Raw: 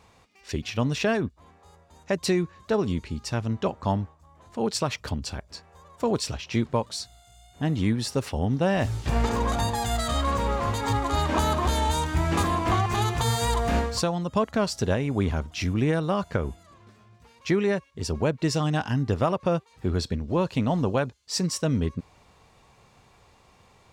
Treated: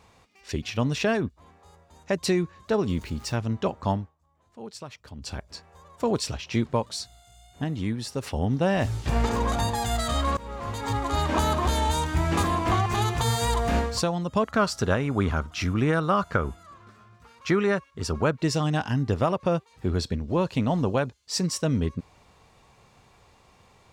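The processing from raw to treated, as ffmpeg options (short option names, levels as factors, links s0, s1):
-filter_complex "[0:a]asettb=1/sr,asplit=3[s0][s1][s2];[s0]atrim=end=2.894[s3];[s1]atrim=start=2.89:end=3.36,asetpts=PTS-STARTPTS,afade=t=in:d=0.004:c=qsin,afade=t=out:st=0.466:d=0.004:c=qsin,aeval=exprs='val(0)+0.5*0.00708*sgn(val(0))':c=same[s4];[s2]atrim=start=3.356[s5];[s3][s4]acrossfade=d=0.004:c1=hsin:c2=qsin[s6];[s6][s5]acrossfade=d=0.004:c1=qsin:c2=hsin,asettb=1/sr,asplit=3[s7][s8][s9];[s7]atrim=end=14.484[s10];[s8]atrim=start=14.48:end=18.38,asetpts=PTS-STARTPTS,afade=t=in:d=0.004:c=qsin,afade=t=out:st=3.896:d=0.004:c=qsin,equalizer=f=1300:t=o:w=0.55:g=11[s11];[s9]atrim=start=18.376[s12];[s10][s11]acrossfade=d=0.004:c1=hsin:c2=qsin[s13];[s13][s12]acrossfade=d=0.004:c1=qsin:c2=hsin,asplit=6[s14][s15][s16][s17][s18][s19];[s14]atrim=end=4.11,asetpts=PTS-STARTPTS,afade=t=out:st=3.91:d=0.2:silence=0.211349[s20];[s15]atrim=start=4.11:end=5.14,asetpts=PTS-STARTPTS,volume=0.211[s21];[s16]atrim=start=5.14:end=7.642,asetpts=PTS-STARTPTS,afade=t=in:d=0.2:silence=0.211349[s22];[s17]atrim=start=7.638:end=8.232,asetpts=PTS-STARTPTS,volume=0.596[s23];[s18]atrim=start=8.228:end=10.37,asetpts=PTS-STARTPTS,afade=t=out:st=2.138:d=0.004:c=hsin:silence=0.11885[s24];[s19]atrim=start=10.37,asetpts=PTS-STARTPTS,afade=t=in:d=1.09:c=qsin:silence=0.11885[s25];[s20][s21][s22]concat=n=3:v=0:a=1[s26];[s26][s23]acrossfade=d=0.004:c1=hsin:c2=hsin[s27];[s24][s25]concat=n=2:v=0:a=1[s28];[s27][s28]acrossfade=d=0.004:c1=hsin:c2=hsin"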